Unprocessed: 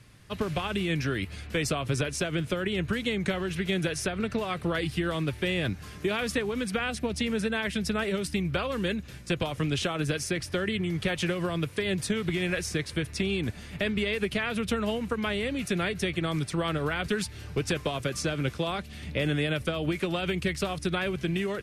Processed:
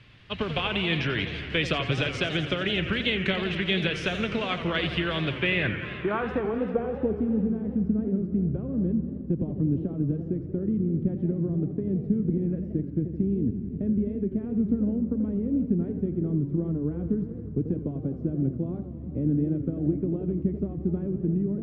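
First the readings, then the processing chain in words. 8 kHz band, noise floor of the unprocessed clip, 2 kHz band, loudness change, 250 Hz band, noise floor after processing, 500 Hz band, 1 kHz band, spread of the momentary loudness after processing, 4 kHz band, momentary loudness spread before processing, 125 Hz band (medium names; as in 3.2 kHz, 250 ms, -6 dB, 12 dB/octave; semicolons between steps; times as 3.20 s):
under -15 dB, -44 dBFS, -0.5 dB, +2.0 dB, +4.5 dB, -37 dBFS, -0.5 dB, -2.5 dB, 4 LU, +0.5 dB, 3 LU, +3.5 dB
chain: low-pass sweep 3.1 kHz -> 270 Hz, 5.30–7.42 s; modulated delay 86 ms, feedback 80%, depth 179 cents, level -11 dB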